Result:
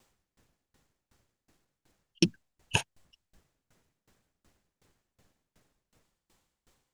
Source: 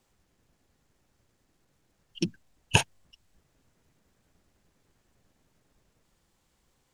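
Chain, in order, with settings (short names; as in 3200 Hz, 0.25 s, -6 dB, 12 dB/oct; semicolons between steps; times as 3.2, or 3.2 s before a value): low shelf 490 Hz -3 dB; dB-ramp tremolo decaying 2.7 Hz, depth 27 dB; gain +7 dB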